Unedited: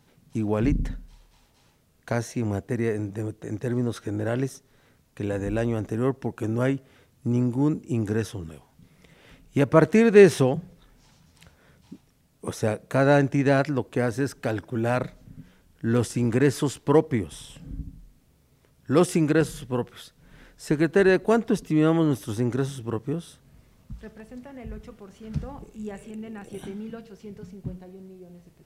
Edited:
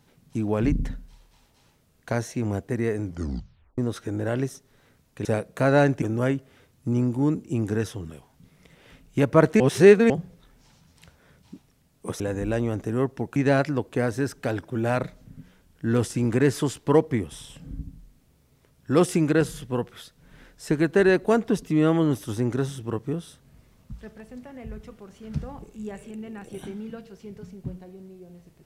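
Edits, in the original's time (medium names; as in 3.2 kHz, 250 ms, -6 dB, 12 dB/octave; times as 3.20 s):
3.03 s: tape stop 0.75 s
5.25–6.41 s: swap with 12.59–13.36 s
9.99–10.49 s: reverse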